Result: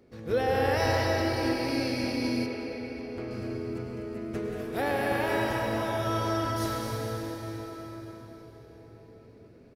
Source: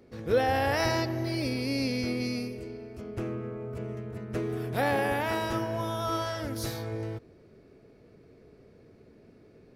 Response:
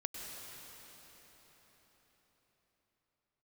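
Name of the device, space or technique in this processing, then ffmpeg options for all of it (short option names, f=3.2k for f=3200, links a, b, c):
cave: -filter_complex "[0:a]aecho=1:1:247:0.398[a];[1:a]atrim=start_sample=2205[b];[a][b]afir=irnorm=-1:irlink=0,asettb=1/sr,asplit=3[c][d][e];[c]atrim=end=2.464[f];[d]atrim=start=2.46:end=3.31,asetpts=PTS-STARTPTS,afade=t=in:d=0.004:c=qsin,afade=t=out:st=0.846:d=0.004:c=qsin,bass=f=250:g=-5,treble=f=4k:g=-10[g];[e]atrim=start=3.306[h];[f][g]acrossfade=d=0.004:c1=hsin:c2=qsin[i];[i][h]acrossfade=d=0.004:c1=qsin:c2=hsin"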